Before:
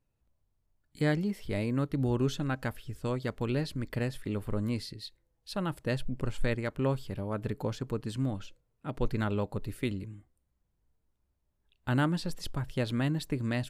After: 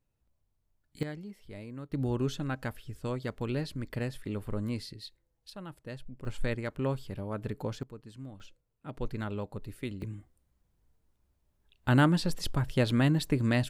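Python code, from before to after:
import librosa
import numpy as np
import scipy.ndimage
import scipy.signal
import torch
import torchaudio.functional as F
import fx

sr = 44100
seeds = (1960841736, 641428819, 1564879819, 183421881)

y = fx.gain(x, sr, db=fx.steps((0.0, -1.0), (1.03, -12.5), (1.92, -2.0), (5.5, -11.0), (6.25, -2.0), (7.83, -13.0), (8.4, -5.0), (10.02, 4.5)))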